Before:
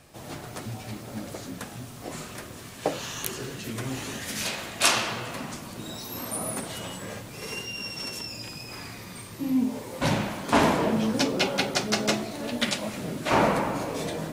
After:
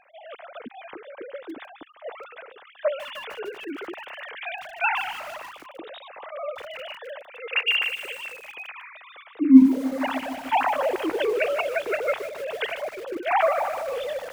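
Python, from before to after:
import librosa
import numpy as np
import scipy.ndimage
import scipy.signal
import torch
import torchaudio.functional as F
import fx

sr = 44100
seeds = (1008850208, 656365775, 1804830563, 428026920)

y = fx.sine_speech(x, sr)
y = fx.echo_crushed(y, sr, ms=151, feedback_pct=80, bits=6, wet_db=-14.5)
y = y * 10.0 ** (3.0 / 20.0)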